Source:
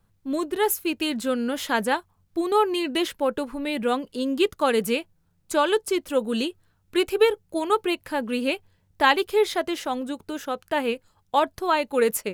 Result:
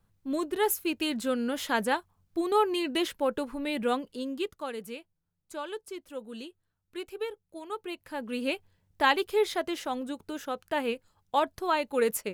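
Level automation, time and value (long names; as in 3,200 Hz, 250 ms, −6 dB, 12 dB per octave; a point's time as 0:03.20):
0:03.93 −4 dB
0:04.77 −16 dB
0:07.65 −16 dB
0:08.51 −5 dB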